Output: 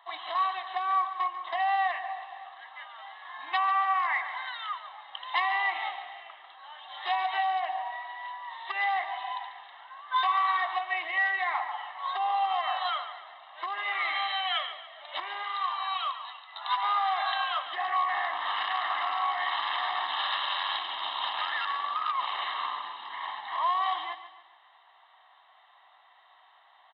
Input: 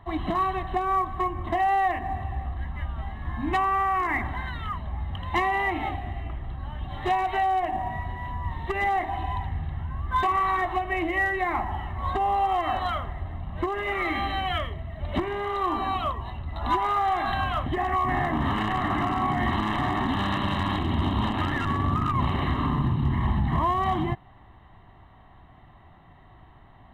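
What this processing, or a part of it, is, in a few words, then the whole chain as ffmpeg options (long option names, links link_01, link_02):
musical greeting card: -filter_complex "[0:a]asettb=1/sr,asplit=3[link_01][link_02][link_03];[link_01]atrim=end=15.434[link_04];[link_02]atrim=start=15.43:end=16.83,asetpts=PTS-STARTPTS,afade=type=in:duration=0.004:curve=qsin,afade=type=out:start_time=1.396:duration=0.004:curve=qsin,highpass=890[link_05];[link_03]atrim=start=16.826[link_06];[link_04][link_05]acrossfade=duration=0.004:curve1=hsin:curve2=qsin[link_07];[link_07][link_06]acrossfade=duration=0.004:curve1=qsin:curve2=hsin,aecho=1:1:142|284|426|568:0.251|0.105|0.0443|0.0186,aresample=11025,aresample=44100,highpass=frequency=770:width=0.5412,highpass=frequency=770:width=1.3066,equalizer=frequency=3500:width_type=o:width=0.35:gain=10.5,volume=-1.5dB"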